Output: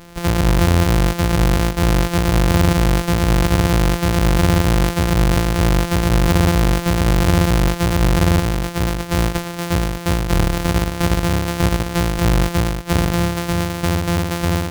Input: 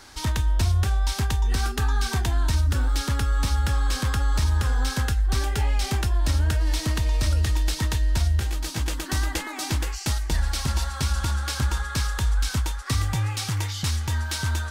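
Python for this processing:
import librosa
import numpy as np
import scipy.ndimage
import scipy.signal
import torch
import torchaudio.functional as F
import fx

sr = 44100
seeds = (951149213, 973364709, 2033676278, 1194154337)

y = np.r_[np.sort(x[:len(x) // 256 * 256].reshape(-1, 256), axis=1).ravel(), x[len(x) // 256 * 256:]]
y = y * 10.0 ** (6.5 / 20.0)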